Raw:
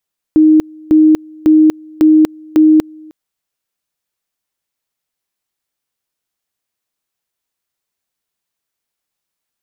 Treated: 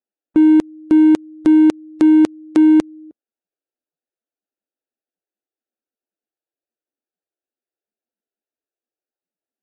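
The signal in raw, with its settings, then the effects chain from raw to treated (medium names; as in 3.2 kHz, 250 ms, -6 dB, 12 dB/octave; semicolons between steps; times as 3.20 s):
two-level tone 311 Hz -4 dBFS, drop 28 dB, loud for 0.24 s, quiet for 0.31 s, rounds 5
local Wiener filter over 41 samples; bass shelf 130 Hz -11 dB; Vorbis 48 kbps 22.05 kHz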